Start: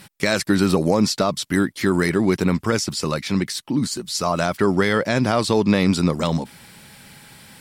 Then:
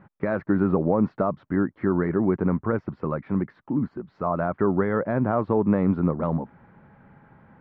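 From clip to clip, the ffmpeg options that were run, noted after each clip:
-af "lowpass=f=1400:w=0.5412,lowpass=f=1400:w=1.3066,volume=0.668"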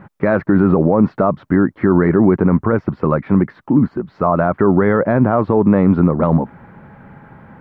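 -af "alimiter=level_in=5.01:limit=0.891:release=50:level=0:latency=1,volume=0.794"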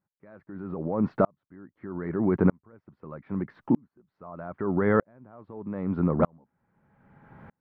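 -af "aeval=exprs='val(0)*pow(10,-40*if(lt(mod(-0.8*n/s,1),2*abs(-0.8)/1000),1-mod(-0.8*n/s,1)/(2*abs(-0.8)/1000),(mod(-0.8*n/s,1)-2*abs(-0.8)/1000)/(1-2*abs(-0.8)/1000))/20)':c=same,volume=0.562"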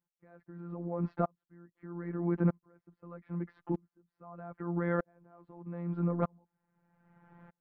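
-af "afftfilt=real='hypot(re,im)*cos(PI*b)':imag='0':win_size=1024:overlap=0.75,volume=0.596"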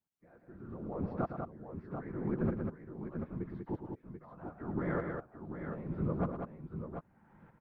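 -af "afftfilt=real='hypot(re,im)*cos(2*PI*random(0))':imag='hypot(re,im)*sin(2*PI*random(1))':win_size=512:overlap=0.75,aecho=1:1:111|193|737|750:0.355|0.531|0.398|0.126,volume=1.26"

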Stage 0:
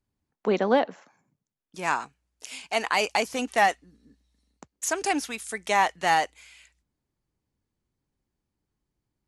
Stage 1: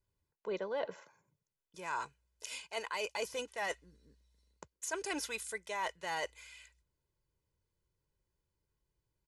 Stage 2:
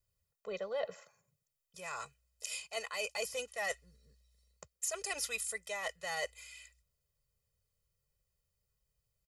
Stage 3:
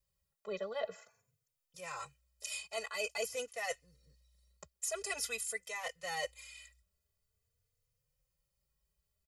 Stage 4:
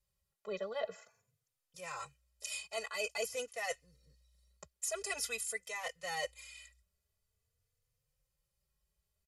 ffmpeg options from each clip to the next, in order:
-af "aecho=1:1:2:0.72,areverse,acompressor=threshold=0.0316:ratio=6,areverse,volume=0.562"
-af "highshelf=f=4800:g=9,aecho=1:1:1.6:0.97,volume=0.596"
-filter_complex "[0:a]asplit=2[s0][s1];[s1]adelay=3.3,afreqshift=0.47[s2];[s0][s2]amix=inputs=2:normalize=1,volume=1.33"
-af "aresample=32000,aresample=44100"

